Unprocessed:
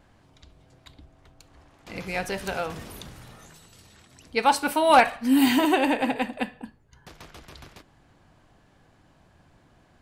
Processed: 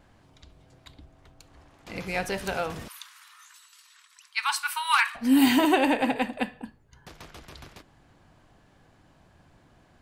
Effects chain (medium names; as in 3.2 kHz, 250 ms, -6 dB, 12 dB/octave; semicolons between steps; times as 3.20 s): 2.88–5.15 s: steep high-pass 980 Hz 72 dB/octave